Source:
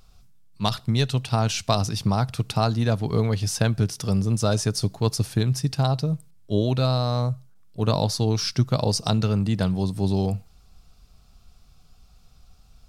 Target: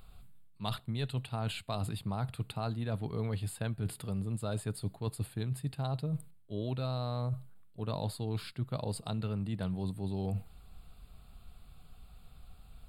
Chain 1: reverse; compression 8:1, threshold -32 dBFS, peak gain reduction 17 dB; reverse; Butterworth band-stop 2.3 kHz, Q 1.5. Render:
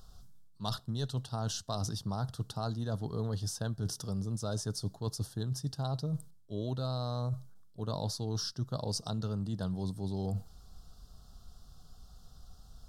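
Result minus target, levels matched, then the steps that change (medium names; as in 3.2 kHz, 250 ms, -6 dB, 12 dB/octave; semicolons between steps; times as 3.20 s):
8 kHz band +6.5 dB
change: Butterworth band-stop 5.8 kHz, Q 1.5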